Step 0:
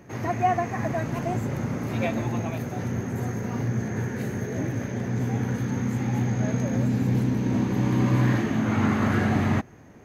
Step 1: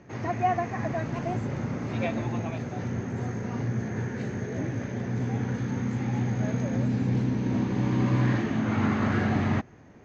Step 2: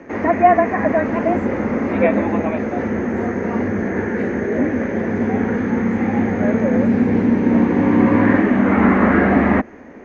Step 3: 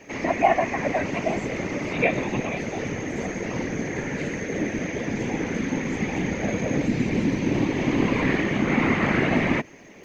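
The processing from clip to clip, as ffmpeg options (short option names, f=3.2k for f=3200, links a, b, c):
-af "lowpass=f=6.1k:w=0.5412,lowpass=f=6.1k:w=1.3066,volume=-2.5dB"
-filter_complex "[0:a]afreqshift=-20,acrossover=split=2600[a][b];[b]acompressor=threshold=-56dB:ratio=4:attack=1:release=60[c];[a][c]amix=inputs=2:normalize=0,equalizer=f=125:t=o:w=1:g=-10,equalizer=f=250:t=o:w=1:g=12,equalizer=f=500:t=o:w=1:g=10,equalizer=f=1k:t=o:w=1:g=5,equalizer=f=2k:t=o:w=1:g=11,equalizer=f=4k:t=o:w=1:g=-4,volume=4dB"
-af "afftfilt=real='hypot(re,im)*cos(2*PI*random(0))':imag='hypot(re,im)*sin(2*PI*random(1))':win_size=512:overlap=0.75,aexciter=amount=7.9:drive=4.2:freq=2.3k,volume=-2.5dB"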